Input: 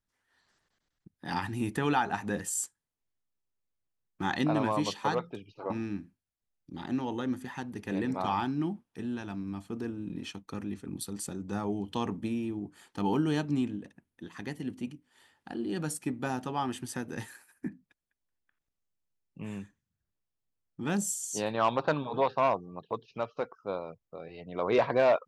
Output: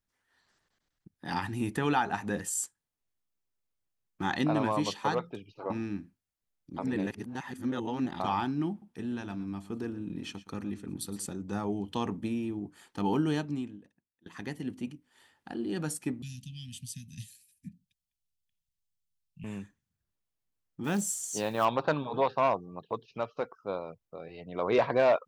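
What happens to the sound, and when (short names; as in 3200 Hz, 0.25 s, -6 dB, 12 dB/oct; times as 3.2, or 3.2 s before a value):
6.78–8.2 reverse
8.7–11.26 echo 0.117 s -16 dB
13.3–14.26 fade out quadratic, to -24 dB
16.22–19.44 inverse Chebyshev band-stop 370–1400 Hz, stop band 50 dB
20.84–21.65 companded quantiser 6-bit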